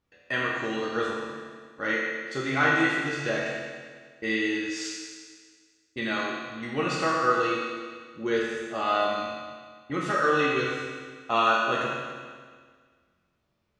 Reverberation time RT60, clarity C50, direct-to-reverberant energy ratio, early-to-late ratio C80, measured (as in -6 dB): 1.7 s, -1.0 dB, -5.5 dB, 0.5 dB